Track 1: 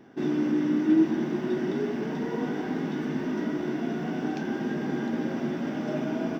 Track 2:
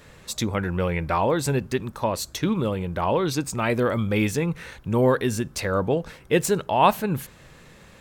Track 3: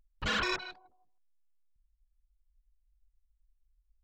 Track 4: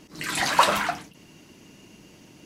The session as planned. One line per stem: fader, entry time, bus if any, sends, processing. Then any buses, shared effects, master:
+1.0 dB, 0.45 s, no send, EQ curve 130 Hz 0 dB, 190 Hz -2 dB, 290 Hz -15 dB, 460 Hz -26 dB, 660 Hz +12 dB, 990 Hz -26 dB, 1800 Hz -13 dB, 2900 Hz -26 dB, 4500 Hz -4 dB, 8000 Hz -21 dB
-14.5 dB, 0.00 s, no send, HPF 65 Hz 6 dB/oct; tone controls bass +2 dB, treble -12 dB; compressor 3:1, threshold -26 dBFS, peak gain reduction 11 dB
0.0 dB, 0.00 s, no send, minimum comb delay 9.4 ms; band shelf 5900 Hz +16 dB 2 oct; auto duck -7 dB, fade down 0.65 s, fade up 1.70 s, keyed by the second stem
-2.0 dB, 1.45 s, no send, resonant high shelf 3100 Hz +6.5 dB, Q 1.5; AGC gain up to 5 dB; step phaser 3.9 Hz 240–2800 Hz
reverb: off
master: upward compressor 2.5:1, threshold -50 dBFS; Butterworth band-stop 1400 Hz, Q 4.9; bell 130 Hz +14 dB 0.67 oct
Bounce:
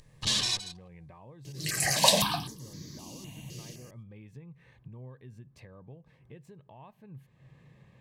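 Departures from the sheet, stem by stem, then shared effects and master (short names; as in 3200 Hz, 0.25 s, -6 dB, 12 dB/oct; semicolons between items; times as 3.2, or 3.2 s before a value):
stem 1: muted; stem 2 -14.5 dB -> -26.0 dB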